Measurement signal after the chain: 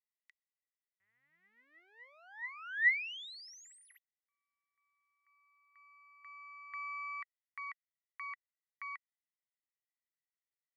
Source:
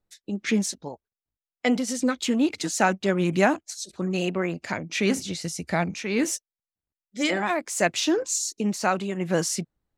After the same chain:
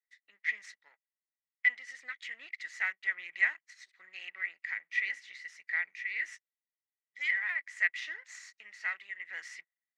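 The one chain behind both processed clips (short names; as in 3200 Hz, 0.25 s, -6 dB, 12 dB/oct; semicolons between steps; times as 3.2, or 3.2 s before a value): half-wave gain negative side -7 dB; ladder band-pass 2000 Hz, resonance 90%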